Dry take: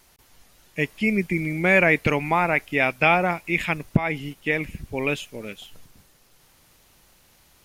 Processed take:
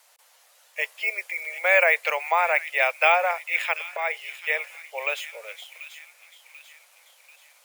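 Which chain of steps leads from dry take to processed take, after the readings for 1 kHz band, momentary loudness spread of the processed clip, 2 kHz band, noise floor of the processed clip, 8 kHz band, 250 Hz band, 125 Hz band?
0.0 dB, 20 LU, 0.0 dB, -59 dBFS, +0.5 dB, under -40 dB, under -40 dB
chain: steep high-pass 500 Hz 72 dB/octave; on a send: feedback echo behind a high-pass 739 ms, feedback 48%, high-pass 2.7 kHz, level -9.5 dB; on the sum: careless resampling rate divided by 2×, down none, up hold

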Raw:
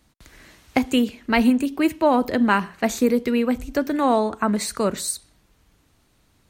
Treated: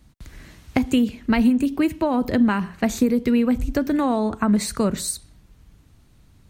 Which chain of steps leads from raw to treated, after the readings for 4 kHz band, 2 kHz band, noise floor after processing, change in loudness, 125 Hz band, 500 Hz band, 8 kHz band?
-2.5 dB, -4.0 dB, -54 dBFS, 0.0 dB, +5.0 dB, -3.0 dB, -0.5 dB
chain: compression, threshold -19 dBFS, peak gain reduction 7 dB; tone controls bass +11 dB, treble 0 dB

